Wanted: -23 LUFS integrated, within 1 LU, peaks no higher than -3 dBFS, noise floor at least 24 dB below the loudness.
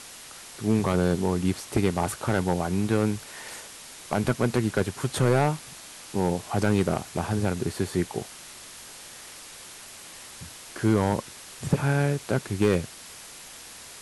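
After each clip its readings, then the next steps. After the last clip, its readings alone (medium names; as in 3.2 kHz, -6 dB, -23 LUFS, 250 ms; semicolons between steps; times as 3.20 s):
clipped samples 0.5%; clipping level -13.5 dBFS; noise floor -44 dBFS; noise floor target -51 dBFS; loudness -26.5 LUFS; peak level -13.5 dBFS; loudness target -23.0 LUFS
-> clip repair -13.5 dBFS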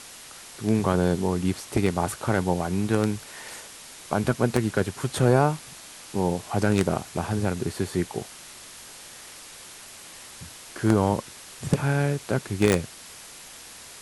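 clipped samples 0.0%; noise floor -44 dBFS; noise floor target -50 dBFS
-> noise reduction 6 dB, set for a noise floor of -44 dBFS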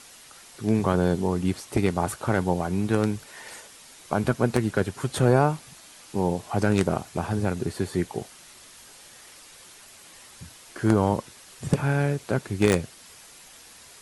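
noise floor -49 dBFS; noise floor target -50 dBFS
-> noise reduction 6 dB, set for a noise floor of -49 dBFS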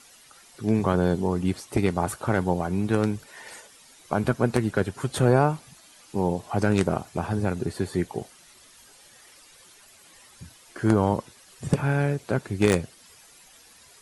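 noise floor -53 dBFS; loudness -25.5 LUFS; peak level -4.0 dBFS; loudness target -23.0 LUFS
-> trim +2.5 dB; peak limiter -3 dBFS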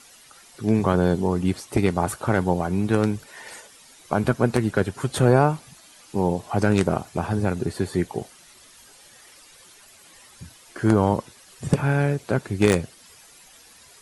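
loudness -23.0 LUFS; peak level -3.0 dBFS; noise floor -51 dBFS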